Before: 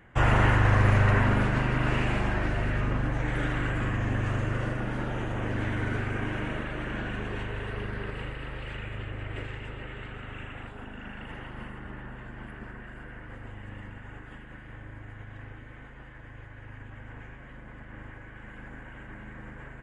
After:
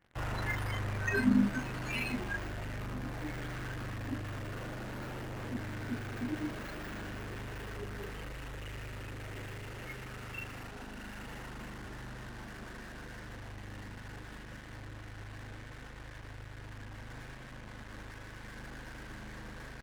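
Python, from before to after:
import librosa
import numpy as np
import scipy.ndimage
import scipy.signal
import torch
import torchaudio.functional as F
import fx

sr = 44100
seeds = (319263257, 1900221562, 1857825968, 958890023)

p1 = scipy.signal.medfilt(x, 9)
p2 = fx.echo_split(p1, sr, split_hz=590.0, low_ms=767, high_ms=196, feedback_pct=52, wet_db=-14.5)
p3 = fx.fuzz(p2, sr, gain_db=50.0, gate_db=-48.0)
p4 = p2 + (p3 * 10.0 ** (-11.5 / 20.0))
p5 = fx.noise_reduce_blind(p4, sr, reduce_db=21)
y = p5 * 10.0 ** (2.5 / 20.0)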